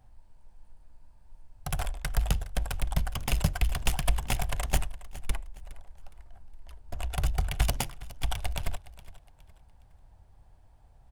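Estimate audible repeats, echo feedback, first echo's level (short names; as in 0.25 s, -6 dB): 2, 34%, -18.0 dB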